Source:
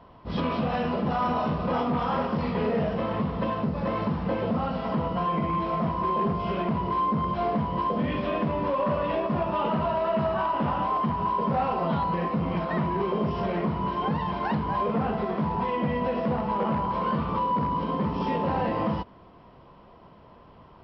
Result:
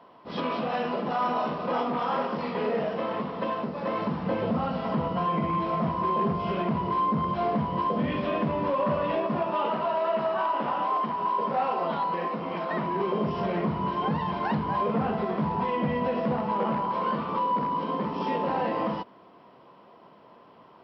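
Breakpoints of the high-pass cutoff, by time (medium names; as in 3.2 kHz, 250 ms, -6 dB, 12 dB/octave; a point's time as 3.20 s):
3.84 s 270 Hz
4.43 s 99 Hz
9.04 s 99 Hz
9.66 s 320 Hz
12.57 s 320 Hz
13.57 s 100 Hz
16.05 s 100 Hz
16.97 s 230 Hz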